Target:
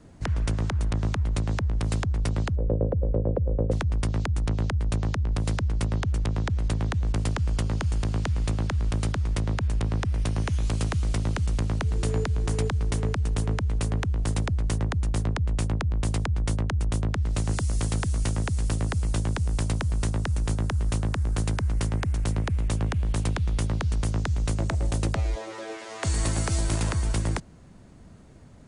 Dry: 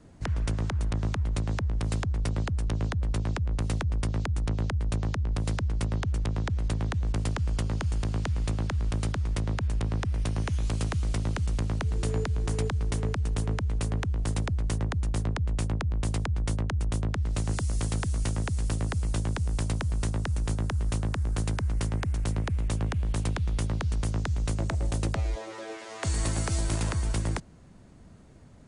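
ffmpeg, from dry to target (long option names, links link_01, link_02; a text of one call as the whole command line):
ffmpeg -i in.wav -filter_complex "[0:a]asplit=3[link_01][link_02][link_03];[link_01]afade=type=out:start_time=2.55:duration=0.02[link_04];[link_02]lowpass=frequency=520:width_type=q:width=6.4,afade=type=in:start_time=2.55:duration=0.02,afade=type=out:start_time=3.71:duration=0.02[link_05];[link_03]afade=type=in:start_time=3.71:duration=0.02[link_06];[link_04][link_05][link_06]amix=inputs=3:normalize=0,volume=2.5dB" out.wav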